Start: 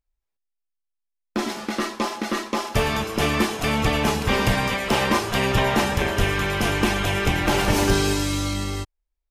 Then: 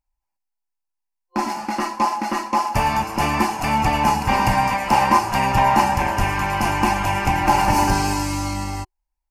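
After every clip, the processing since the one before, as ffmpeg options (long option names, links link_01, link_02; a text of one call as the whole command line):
ffmpeg -i in.wav -af "superequalizer=7b=0.355:9b=3.55:13b=0.282" out.wav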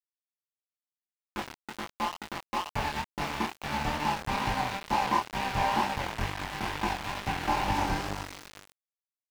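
ffmpeg -i in.wav -filter_complex "[0:a]aeval=exprs='val(0)*gte(abs(val(0)),0.141)':channel_layout=same,flanger=delay=19:depth=7.9:speed=2.2,acrossover=split=5200[link_01][link_02];[link_02]acompressor=threshold=-41dB:ratio=4:attack=1:release=60[link_03];[link_01][link_03]amix=inputs=2:normalize=0,volume=-7.5dB" out.wav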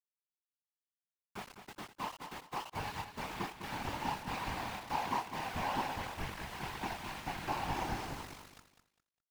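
ffmpeg -i in.wav -filter_complex "[0:a]afftfilt=real='hypot(re,im)*cos(2*PI*random(0))':imag='hypot(re,im)*sin(2*PI*random(1))':win_size=512:overlap=0.75,acrusher=bits=7:mix=0:aa=0.5,asplit=2[link_01][link_02];[link_02]aecho=0:1:203|406|609:0.335|0.0837|0.0209[link_03];[link_01][link_03]amix=inputs=2:normalize=0,volume=-3dB" out.wav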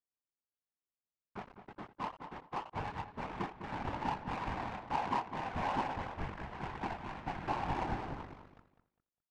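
ffmpeg -i in.wav -af "adynamicsmooth=sensitivity=5.5:basefreq=1200,volume=1.5dB" out.wav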